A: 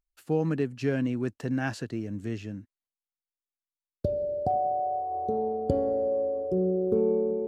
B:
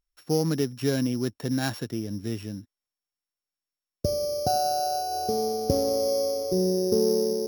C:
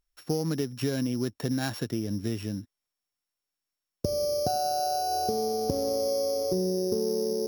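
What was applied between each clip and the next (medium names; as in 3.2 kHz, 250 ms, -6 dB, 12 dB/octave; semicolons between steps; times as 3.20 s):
sorted samples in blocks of 8 samples; trim +2 dB
compression, threshold -28 dBFS, peak gain reduction 10 dB; trim +3 dB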